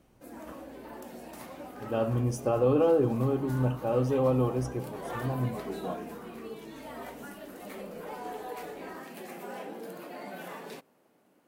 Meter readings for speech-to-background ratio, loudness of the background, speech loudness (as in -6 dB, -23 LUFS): 14.0 dB, -42.5 LUFS, -28.5 LUFS